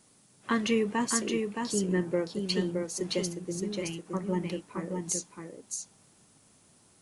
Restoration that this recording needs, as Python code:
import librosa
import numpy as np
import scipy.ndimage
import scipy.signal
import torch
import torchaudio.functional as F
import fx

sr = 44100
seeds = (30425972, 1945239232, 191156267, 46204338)

y = fx.noise_reduce(x, sr, print_start_s=6.48, print_end_s=6.98, reduce_db=14.0)
y = fx.fix_echo_inverse(y, sr, delay_ms=619, level_db=-4.5)